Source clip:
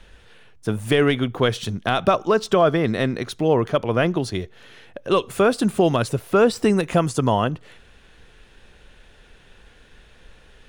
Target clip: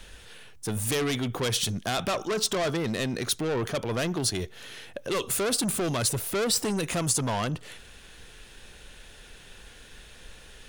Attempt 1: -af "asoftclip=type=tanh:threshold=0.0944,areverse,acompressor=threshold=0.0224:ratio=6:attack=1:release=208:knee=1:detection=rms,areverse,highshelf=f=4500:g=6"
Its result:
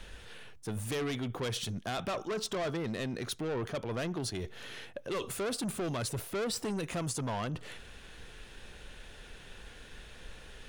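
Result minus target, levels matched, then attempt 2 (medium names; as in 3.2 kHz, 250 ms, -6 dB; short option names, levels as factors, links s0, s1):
compression: peak gain reduction +6 dB; 8 kHz band -4.5 dB
-af "asoftclip=type=tanh:threshold=0.0944,areverse,acompressor=threshold=0.0531:ratio=6:attack=1:release=208:knee=1:detection=rms,areverse,highshelf=f=4500:g=14.5"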